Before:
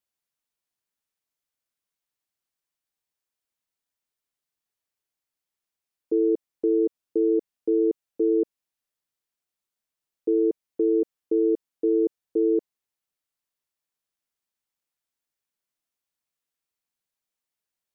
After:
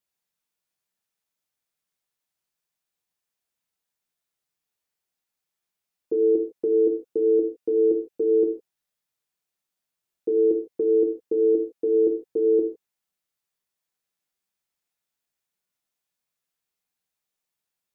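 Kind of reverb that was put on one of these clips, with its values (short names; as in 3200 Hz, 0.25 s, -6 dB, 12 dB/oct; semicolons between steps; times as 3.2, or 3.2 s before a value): non-linear reverb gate 0.18 s falling, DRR 1 dB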